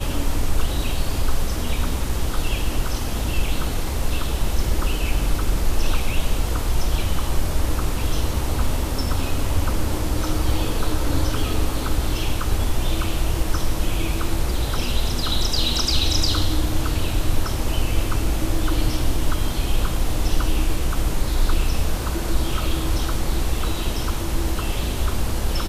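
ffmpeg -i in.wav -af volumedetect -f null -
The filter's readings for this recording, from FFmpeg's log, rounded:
mean_volume: -18.8 dB
max_volume: -6.2 dB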